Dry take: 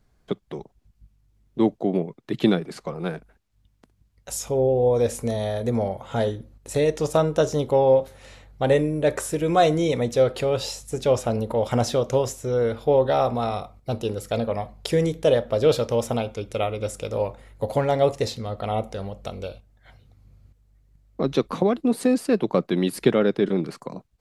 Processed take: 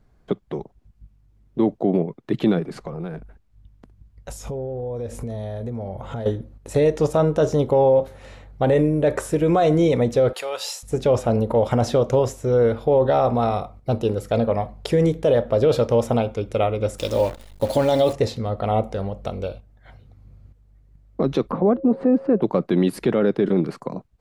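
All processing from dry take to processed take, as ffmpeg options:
ffmpeg -i in.wav -filter_complex "[0:a]asettb=1/sr,asplit=3[link_01][link_02][link_03];[link_01]atrim=end=2.684[link_04];[link_02]atrim=start=2.68:end=6.26,asetpts=PTS-STARTPTS,afade=type=in:duration=0.004:curve=qsin,afade=type=out:start_time=3.576:duration=0.004:curve=qsin,lowshelf=frequency=140:gain=9,acompressor=threshold=-32dB:ratio=6:attack=3.2:release=140:knee=1:detection=peak[link_05];[link_03]atrim=start=6.256[link_06];[link_04][link_05]acrossfade=duration=0.004:curve1=hsin:curve2=qsin[link_07];[link_07][link_06]acrossfade=duration=0.004:curve1=qsin:curve2=hsin,asettb=1/sr,asplit=3[link_08][link_09][link_10];[link_08]atrim=end=10.334[link_11];[link_09]atrim=start=10.33:end=10.83,asetpts=PTS-STARTPTS,afade=type=in:duration=0.004:curve=qsin,afade=type=out:start_time=0.496:duration=0.004:curve=qsin,highpass=950,highshelf=frequency=6600:gain=11[link_12];[link_10]atrim=start=10.826[link_13];[link_11][link_12]acrossfade=duration=0.004:curve1=hsin:curve2=qsin[link_14];[link_14][link_13]acrossfade=duration=0.004:curve1=qsin:curve2=hsin,asettb=1/sr,asplit=3[link_15][link_16][link_17];[link_15]atrim=end=16.984[link_18];[link_16]atrim=start=16.98:end=18.13,asetpts=PTS-STARTPTS,afade=type=in:duration=0.004:curve=qsin,afade=type=out:start_time=1.146:duration=0.004:curve=qsin,highshelf=frequency=2700:width_type=q:width=1.5:gain=11,aecho=1:1:3.4:0.41,atrim=end_sample=50715,acrusher=bits=7:dc=4:mix=0:aa=0.000001[link_19];[link_17]atrim=start=18.126[link_20];[link_18][link_19]acrossfade=duration=0.004:curve1=hsin:curve2=qsin[link_21];[link_21][link_20]acrossfade=duration=0.004:curve1=qsin:curve2=hsin,asettb=1/sr,asplit=3[link_22][link_23][link_24];[link_22]atrim=end=21.514[link_25];[link_23]atrim=start=21.51:end=22.42,asetpts=PTS-STARTPTS,afade=type=in:duration=0.004:curve=qsin,afade=type=out:start_time=0.906:duration=0.004:curve=qsin,lowpass=1200,acompressor=mode=upward:threshold=-28dB:ratio=2.5:attack=3.2:release=140:knee=2.83:detection=peak,aeval=exprs='val(0)+0.0112*sin(2*PI*540*n/s)':channel_layout=same[link_26];[link_24]atrim=start=22.416[link_27];[link_25][link_26]acrossfade=duration=0.004:curve1=hsin:curve2=qsin[link_28];[link_28][link_27]acrossfade=duration=0.004:curve1=qsin:curve2=hsin,highshelf=frequency=2400:gain=-10,alimiter=limit=-15dB:level=0:latency=1:release=24,volume=5.5dB" out.wav

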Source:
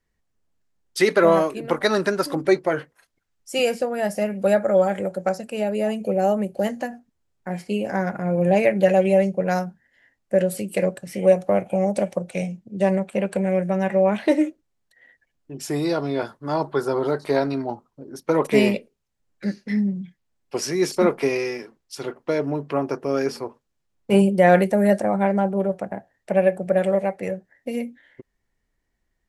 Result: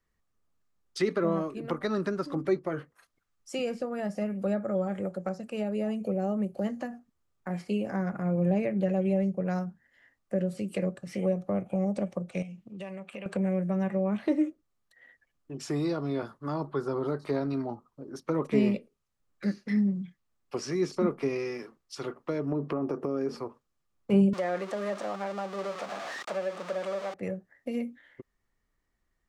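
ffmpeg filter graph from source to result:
ffmpeg -i in.wav -filter_complex "[0:a]asettb=1/sr,asplit=3[link_01][link_02][link_03];[link_01]atrim=end=12.424[link_04];[link_02]atrim=start=12.42:end=13.26,asetpts=PTS-STARTPTS,afade=type=in:duration=0.004:curve=qsin,afade=type=out:start_time=0.836:duration=0.004:curve=qsin,equalizer=frequency=2700:width_type=o:width=0.8:gain=11.5,acompressor=threshold=-38dB:ratio=3:attack=3.2:release=140:knee=1:detection=peak[link_05];[link_03]atrim=start=13.256[link_06];[link_04][link_05]acrossfade=duration=0.004:curve1=hsin:curve2=qsin[link_07];[link_07][link_06]acrossfade=duration=0.004:curve1=qsin:curve2=hsin,asettb=1/sr,asplit=3[link_08][link_09][link_10];[link_08]atrim=end=22.524[link_11];[link_09]atrim=start=22.52:end=23.35,asetpts=PTS-STARTPTS,afade=type=in:duration=0.004:curve=qsin,afade=type=out:start_time=0.826:duration=0.004:curve=qsin,equalizer=frequency=380:width=0.4:gain=10,acompressor=threshold=-20dB:ratio=4:attack=3.2:release=140:knee=1:detection=peak[link_12];[link_10]atrim=start=23.346[link_13];[link_11][link_12]acrossfade=duration=0.004:curve1=hsin:curve2=qsin[link_14];[link_14][link_13]acrossfade=duration=0.004:curve1=qsin:curve2=hsin,asettb=1/sr,asplit=3[link_15][link_16][link_17];[link_15]atrim=end=24.334[link_18];[link_16]atrim=start=24.33:end=27.14,asetpts=PTS-STARTPTS,afade=type=in:duration=0.004:curve=qsin,afade=type=out:start_time=2.806:duration=0.004:curve=qsin,aeval=exprs='val(0)+0.5*0.0841*sgn(val(0))':channel_layout=same,highpass=550[link_19];[link_17]atrim=start=27.136[link_20];[link_18][link_19]acrossfade=duration=0.004:curve1=hsin:curve2=qsin[link_21];[link_21][link_20]acrossfade=duration=0.004:curve1=qsin:curve2=hsin,acrossover=split=7600[link_22][link_23];[link_23]acompressor=threshold=-60dB:ratio=4:attack=1:release=60[link_24];[link_22][link_24]amix=inputs=2:normalize=0,equalizer=frequency=1200:width=5.7:gain=10,acrossover=split=350[link_25][link_26];[link_26]acompressor=threshold=-34dB:ratio=3[link_27];[link_25][link_27]amix=inputs=2:normalize=0,volume=-3.5dB" out.wav

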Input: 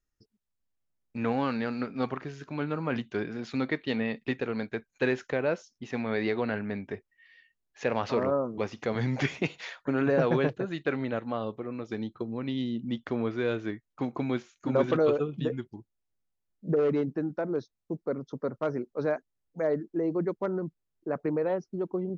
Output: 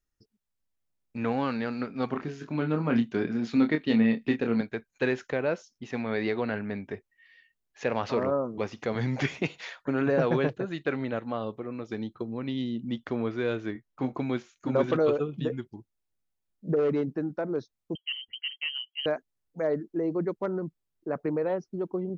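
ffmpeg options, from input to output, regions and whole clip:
ffmpeg -i in.wav -filter_complex "[0:a]asettb=1/sr,asplit=3[link_01][link_02][link_03];[link_01]atrim=end=2.094[link_04];[link_02]atrim=start=2.09:end=4.61,asetpts=PTS-STARTPTS,afade=type=in:duration=0.004:curve=qsin,afade=type=out:start_time=2.516:duration=0.004:curve=qsin,equalizer=frequency=230:width=1.7:gain=7.5,asplit=2[link_05][link_06];[link_06]adelay=26,volume=-6.5dB[link_07];[link_05][link_07]amix=inputs=2:normalize=0,atrim=end_sample=111132[link_08];[link_03]atrim=start=4.606[link_09];[link_04][link_08]acrossfade=duration=0.004:curve1=hsin:curve2=qsin[link_10];[link_10][link_09]acrossfade=duration=0.004:curve1=qsin:curve2=hsin,asettb=1/sr,asplit=3[link_11][link_12][link_13];[link_11]atrim=end=13.734[link_14];[link_12]atrim=start=13.73:end=14.13,asetpts=PTS-STARTPTS,afade=type=in:duration=0.004:curve=qsin,afade=type=out:start_time=0.396:duration=0.004:curve=qsin,highshelf=frequency=4100:gain=-5.5,asplit=2[link_15][link_16];[link_16]adelay=23,volume=-7dB[link_17];[link_15][link_17]amix=inputs=2:normalize=0,atrim=end_sample=17640[link_18];[link_13]atrim=start=14.126[link_19];[link_14][link_18]acrossfade=duration=0.004:curve1=hsin:curve2=qsin[link_20];[link_20][link_19]acrossfade=duration=0.004:curve1=qsin:curve2=hsin,asettb=1/sr,asplit=3[link_21][link_22][link_23];[link_21]atrim=end=17.954[link_24];[link_22]atrim=start=17.95:end=19.06,asetpts=PTS-STARTPTS,afade=type=in:duration=0.004:curve=qsin,afade=type=out:start_time=1.106:duration=0.004:curve=qsin,lowpass=frequency=2800:width_type=q:width=0.5098,lowpass=frequency=2800:width_type=q:width=0.6013,lowpass=frequency=2800:width_type=q:width=0.9,lowpass=frequency=2800:width_type=q:width=2.563,afreqshift=-3300,equalizer=frequency=1600:width_type=o:width=1.9:gain=-6[link_25];[link_23]atrim=start=19.056[link_26];[link_24][link_25]acrossfade=duration=0.004:curve1=hsin:curve2=qsin[link_27];[link_27][link_26]acrossfade=duration=0.004:curve1=qsin:curve2=hsin" out.wav

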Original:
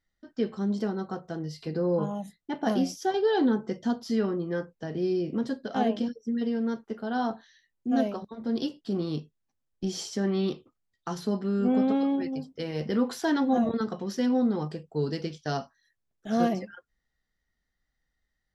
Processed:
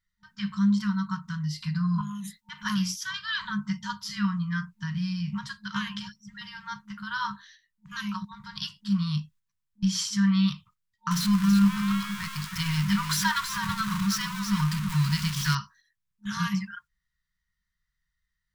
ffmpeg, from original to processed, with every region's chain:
ffmpeg -i in.wav -filter_complex "[0:a]asettb=1/sr,asplit=3[link_01][link_02][link_03];[link_01]atrim=end=2.014[link_04];[link_02]atrim=start=2.01:end=2.65,asetpts=PTS-STARTPTS,afade=type=in:duration=0.004:curve=qsin,afade=type=out:start_time=0.636:duration=0.004:curve=qsin,acompressor=threshold=-36dB:ratio=5:attack=3.2:release=140:knee=1:detection=peak,highshelf=frequency=2300:gain=7[link_05];[link_03]atrim=start=2.646[link_06];[link_04][link_05]acrossfade=duration=0.004:curve1=hsin:curve2=qsin[link_07];[link_07][link_06]acrossfade=duration=0.004:curve1=qsin:curve2=hsin,asettb=1/sr,asplit=3[link_08][link_09][link_10];[link_08]atrim=end=11.114[link_11];[link_09]atrim=start=11.11:end=15.55,asetpts=PTS-STARTPTS,afade=type=in:duration=0.004:curve=qsin,afade=type=out:start_time=4.436:duration=0.004:curve=qsin,aeval=exprs='val(0)+0.5*0.0211*sgn(val(0))':channel_layout=same,aecho=1:1:327:0.422,atrim=end_sample=195804[link_12];[link_10]atrim=start=15.546[link_13];[link_11][link_12]acrossfade=duration=0.004:curve1=hsin:curve2=qsin[link_14];[link_14][link_13]acrossfade=duration=0.004:curve1=qsin:curve2=hsin,agate=range=-8dB:threshold=-56dB:ratio=16:detection=peak,afftfilt=real='re*(1-between(b*sr/4096,210,910))':imag='im*(1-between(b*sr/4096,210,910))':win_size=4096:overlap=0.75,volume=7dB" out.wav

